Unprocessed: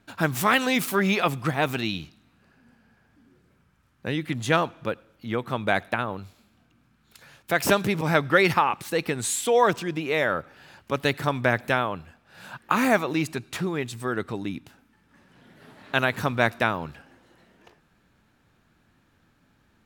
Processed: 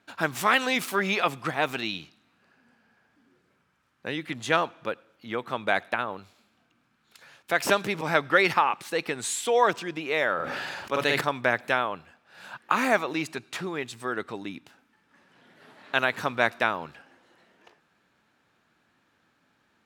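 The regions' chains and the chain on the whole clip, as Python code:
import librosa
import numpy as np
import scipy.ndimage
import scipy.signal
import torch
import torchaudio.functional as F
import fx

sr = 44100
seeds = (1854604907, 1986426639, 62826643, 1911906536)

y = fx.chain(x, sr, fx.hum_notches(base_hz=50, count=5),
    fx.doubler(ms=48.0, db=-5),
    fx.sustainer(db_per_s=22.0), at=(10.35, 11.21))
y = fx.highpass(y, sr, hz=450.0, slope=6)
y = fx.high_shelf(y, sr, hz=11000.0, db=-11.5)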